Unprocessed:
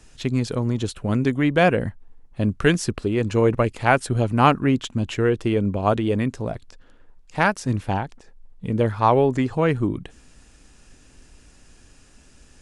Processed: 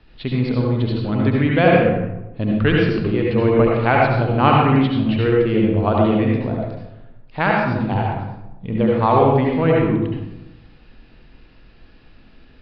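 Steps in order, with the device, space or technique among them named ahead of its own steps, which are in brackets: steep low-pass 4600 Hz 72 dB/oct; bathroom (reverb RT60 1.0 s, pre-delay 64 ms, DRR -2.5 dB); gain -1 dB

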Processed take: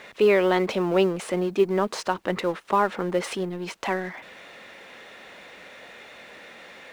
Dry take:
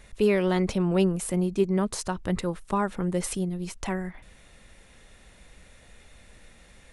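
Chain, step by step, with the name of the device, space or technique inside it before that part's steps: phone line with mismatched companding (BPF 370–3500 Hz; G.711 law mismatch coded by mu); gain +6 dB

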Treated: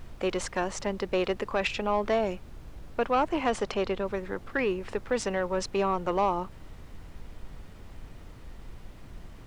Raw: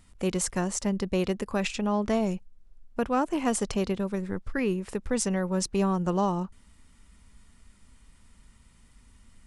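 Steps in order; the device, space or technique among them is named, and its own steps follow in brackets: aircraft cabin announcement (BPF 410–3600 Hz; soft clip -20.5 dBFS, distortion -17 dB; brown noise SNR 11 dB); 3.5–4.05 high shelf 9200 Hz -5.5 dB; gain +5 dB

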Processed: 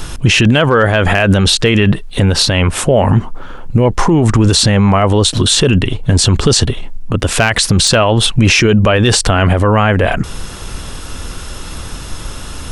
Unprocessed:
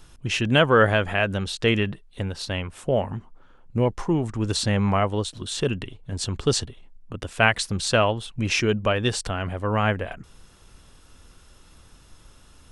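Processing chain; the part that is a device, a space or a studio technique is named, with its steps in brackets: loud club master (compressor 3:1, threshold -22 dBFS, peak gain reduction 8 dB; hard clip -14.5 dBFS, distortion -29 dB; maximiser +26.5 dB); gain -1 dB

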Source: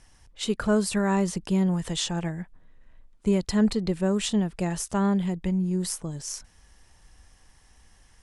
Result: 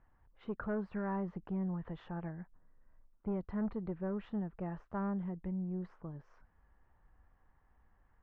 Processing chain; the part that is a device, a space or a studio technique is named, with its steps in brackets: overdriven synthesiser ladder filter (soft clip -18.5 dBFS, distortion -16 dB; ladder low-pass 1700 Hz, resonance 30%); gain -4.5 dB

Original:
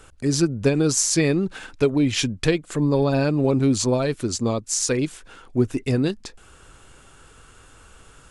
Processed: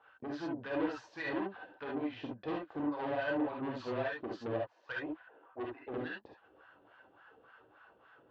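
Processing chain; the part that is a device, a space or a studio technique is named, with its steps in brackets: 4.56–5.94 three-band isolator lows -12 dB, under 360 Hz, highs -15 dB, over 2900 Hz; wah-wah guitar rig (wah 3.5 Hz 340–1600 Hz, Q 3.3; tube stage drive 32 dB, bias 0.5; speaker cabinet 86–3800 Hz, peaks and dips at 190 Hz -4 dB, 390 Hz -8 dB, 1300 Hz -6 dB, 2200 Hz -6 dB); non-linear reverb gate 90 ms rising, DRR -2.5 dB

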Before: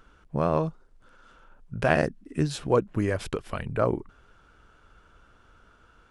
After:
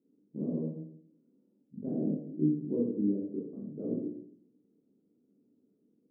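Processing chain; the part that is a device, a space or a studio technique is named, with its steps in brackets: HPF 260 Hz 24 dB/oct; next room (LPF 280 Hz 24 dB/oct; reverb RT60 0.65 s, pre-delay 15 ms, DRR -5 dB); 2.05–2.65 flutter echo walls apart 3.3 m, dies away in 0.22 s; gain -1.5 dB

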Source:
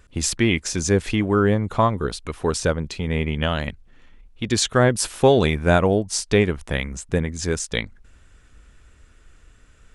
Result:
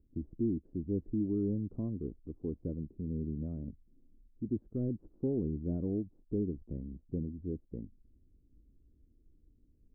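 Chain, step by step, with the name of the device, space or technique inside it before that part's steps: overdriven synthesiser ladder filter (soft clip -12.5 dBFS, distortion -13 dB; ladder low-pass 350 Hz, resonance 50%); gain -4.5 dB

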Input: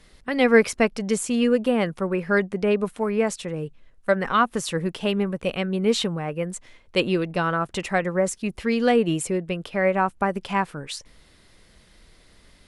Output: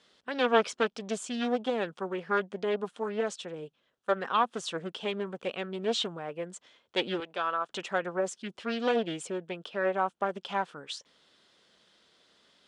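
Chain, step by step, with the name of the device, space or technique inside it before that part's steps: full-range speaker at full volume (Doppler distortion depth 0.46 ms; speaker cabinet 270–7800 Hz, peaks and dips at 310 Hz -3 dB, 1400 Hz +3 dB, 2100 Hz -6 dB, 3300 Hz +7 dB); 7.2–7.7 weighting filter A; gain -7 dB

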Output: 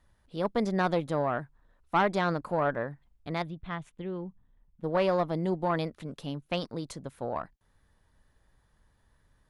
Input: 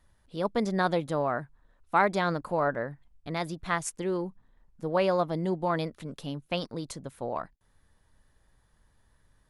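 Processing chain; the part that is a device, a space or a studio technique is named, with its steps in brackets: 3.42–4.84 EQ curve 150 Hz 0 dB, 350 Hz -7 dB, 1700 Hz -9 dB, 3500 Hz -5 dB, 5000 Hz -24 dB; tube preamp driven hard (tube stage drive 16 dB, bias 0.4; high shelf 6200 Hz -5.5 dB); gain +1 dB

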